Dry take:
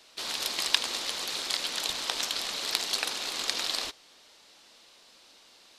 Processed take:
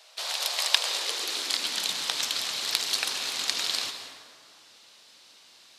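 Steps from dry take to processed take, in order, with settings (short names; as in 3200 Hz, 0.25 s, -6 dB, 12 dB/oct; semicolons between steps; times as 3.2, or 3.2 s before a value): tilt shelf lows -4 dB; plate-style reverb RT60 2.1 s, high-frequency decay 0.5×, pre-delay 0.11 s, DRR 7 dB; high-pass sweep 620 Hz -> 110 Hz, 0.74–2.32; gain -1.5 dB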